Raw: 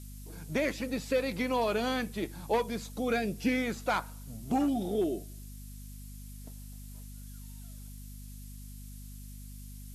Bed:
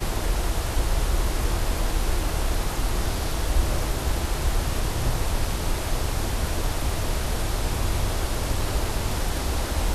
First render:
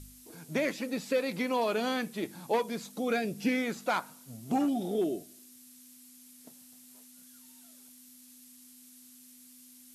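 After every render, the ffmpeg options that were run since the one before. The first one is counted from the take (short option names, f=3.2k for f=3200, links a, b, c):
-af "bandreject=f=50:t=h:w=4,bandreject=f=100:t=h:w=4,bandreject=f=150:t=h:w=4,bandreject=f=200:t=h:w=4"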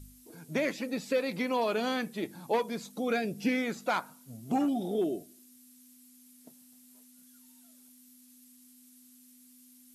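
-af "afftdn=nr=6:nf=-55"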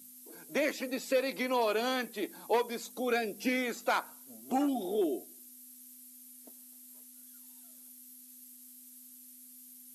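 -af "highpass=f=260:w=0.5412,highpass=f=260:w=1.3066,highshelf=f=10k:g=11.5"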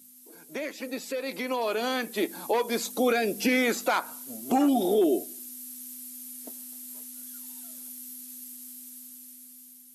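-af "alimiter=level_in=2dB:limit=-24dB:level=0:latency=1:release=169,volume=-2dB,dynaudnorm=f=730:g=5:m=11dB"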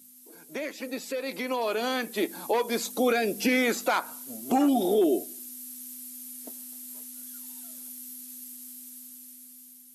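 -af anull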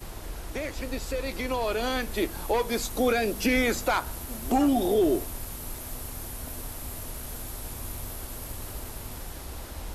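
-filter_complex "[1:a]volume=-13.5dB[a];[0:a][a]amix=inputs=2:normalize=0"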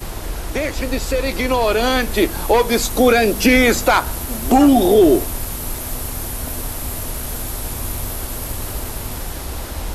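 -af "volume=11.5dB,alimiter=limit=-3dB:level=0:latency=1"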